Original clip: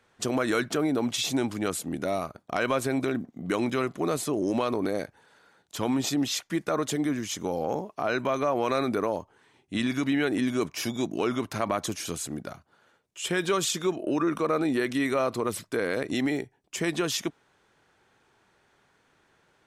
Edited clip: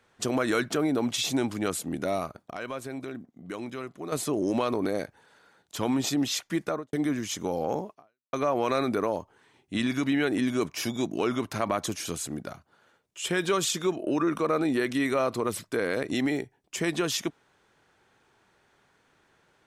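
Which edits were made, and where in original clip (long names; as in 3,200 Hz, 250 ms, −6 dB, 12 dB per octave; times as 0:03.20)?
0:02.51–0:04.12: clip gain −9.5 dB
0:06.63–0:06.93: fade out and dull
0:07.91–0:08.33: fade out exponential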